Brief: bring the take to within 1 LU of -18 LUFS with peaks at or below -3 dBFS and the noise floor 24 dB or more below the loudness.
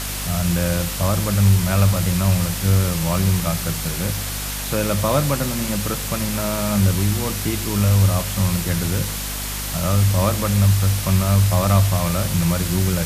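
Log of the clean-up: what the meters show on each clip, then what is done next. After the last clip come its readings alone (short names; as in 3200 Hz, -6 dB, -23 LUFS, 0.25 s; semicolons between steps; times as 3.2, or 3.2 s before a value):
hum 50 Hz; harmonics up to 250 Hz; hum level -25 dBFS; noise floor -27 dBFS; noise floor target -44 dBFS; loudness -19.5 LUFS; peak -4.0 dBFS; loudness target -18.0 LUFS
-> notches 50/100/150/200/250 Hz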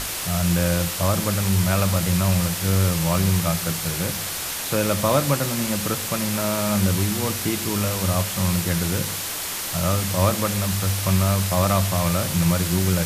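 hum none; noise floor -29 dBFS; noise floor target -46 dBFS
-> noise print and reduce 17 dB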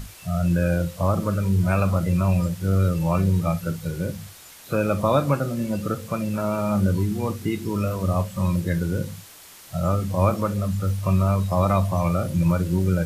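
noise floor -46 dBFS; noise floor target -48 dBFS
-> noise print and reduce 6 dB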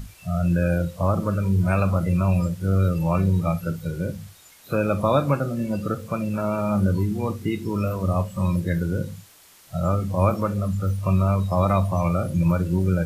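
noise floor -51 dBFS; loudness -23.5 LUFS; peak -7.0 dBFS; loudness target -18.0 LUFS
-> gain +5.5 dB; limiter -3 dBFS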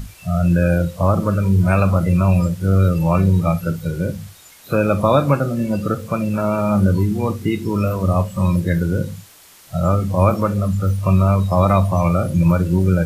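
loudness -18.0 LUFS; peak -3.0 dBFS; noise floor -46 dBFS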